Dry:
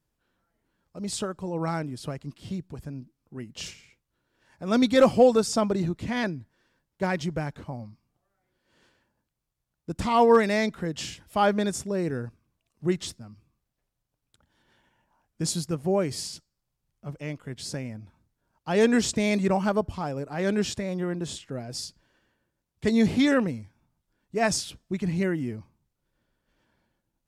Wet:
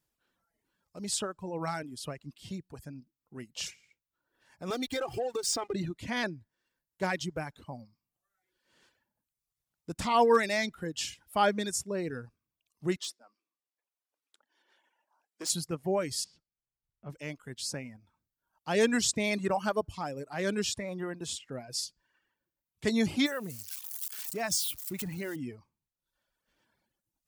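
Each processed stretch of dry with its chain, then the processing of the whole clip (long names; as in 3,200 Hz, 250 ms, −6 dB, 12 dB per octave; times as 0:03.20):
0:04.70–0:05.74: comb filter 2.5 ms, depth 97% + downward compressor, threshold −25 dBFS + slack as between gear wheels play −37.5 dBFS
0:12.96–0:15.50: high-pass filter 320 Hz 24 dB per octave + high-shelf EQ 8,200 Hz −9 dB + gain into a clipping stage and back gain 31 dB
0:16.24–0:17.10: low-pass filter 4,300 Hz + high-shelf EQ 2,100 Hz −9.5 dB
0:23.26–0:25.36: spike at every zero crossing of −28 dBFS + downward compressor 2.5 to 1, threshold −28 dBFS
whole clip: reverb reduction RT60 1 s; spectral tilt +1.5 dB per octave; level −2.5 dB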